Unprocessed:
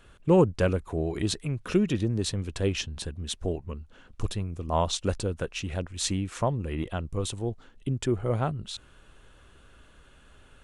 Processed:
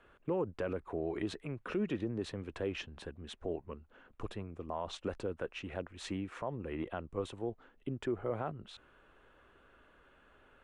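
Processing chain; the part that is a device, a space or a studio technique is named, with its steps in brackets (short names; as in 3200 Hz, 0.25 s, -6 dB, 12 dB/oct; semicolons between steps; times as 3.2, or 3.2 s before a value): DJ mixer with the lows and highs turned down (three-band isolator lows -12 dB, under 250 Hz, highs -19 dB, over 2600 Hz; limiter -22.5 dBFS, peak gain reduction 11 dB); gain -3 dB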